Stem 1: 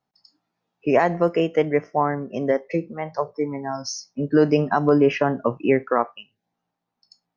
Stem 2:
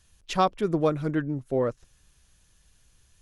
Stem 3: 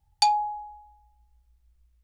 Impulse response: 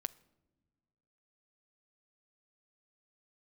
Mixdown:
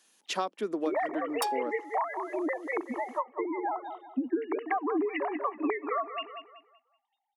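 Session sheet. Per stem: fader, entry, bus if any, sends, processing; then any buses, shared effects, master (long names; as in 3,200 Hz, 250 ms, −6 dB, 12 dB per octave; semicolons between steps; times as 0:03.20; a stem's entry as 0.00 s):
+2.5 dB, 0.00 s, no send, echo send −13 dB, three sine waves on the formant tracks; comb filter 1 ms, depth 80%
+1.0 dB, 0.00 s, no send, no echo send, no processing
−2.5 dB, 1.20 s, send −8 dB, no echo send, phase distortion by the signal itself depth 0.1 ms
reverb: on, pre-delay 6 ms
echo: repeating echo 189 ms, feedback 32%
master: Butterworth high-pass 220 Hz 48 dB per octave; downward compressor 4 to 1, threshold −29 dBFS, peak gain reduction 15.5 dB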